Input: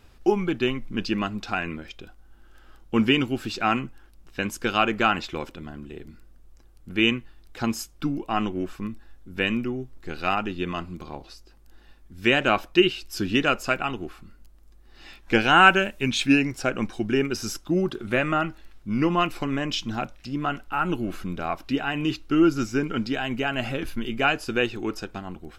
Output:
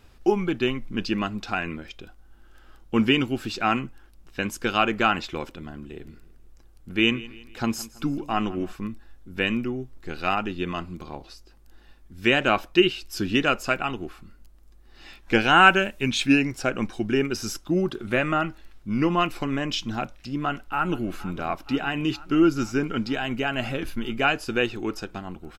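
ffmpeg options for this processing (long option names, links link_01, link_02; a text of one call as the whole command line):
ffmpeg -i in.wav -filter_complex "[0:a]asplit=3[link_01][link_02][link_03];[link_01]afade=type=out:start_time=6:duration=0.02[link_04];[link_02]aecho=1:1:164|328|492:0.112|0.0482|0.0207,afade=type=in:start_time=6:duration=0.02,afade=type=out:start_time=8.71:duration=0.02[link_05];[link_03]afade=type=in:start_time=8.71:duration=0.02[link_06];[link_04][link_05][link_06]amix=inputs=3:normalize=0,asplit=2[link_07][link_08];[link_08]afade=type=in:start_time=20.38:duration=0.01,afade=type=out:start_time=21.08:duration=0.01,aecho=0:1:470|940|1410|1880|2350|2820|3290|3760|4230|4700|5170|5640:0.125893|0.100714|0.0805712|0.064457|0.0515656|0.0412525|0.033002|0.0264016|0.0211213|0.016897|0.0135176|0.0108141[link_09];[link_07][link_09]amix=inputs=2:normalize=0" out.wav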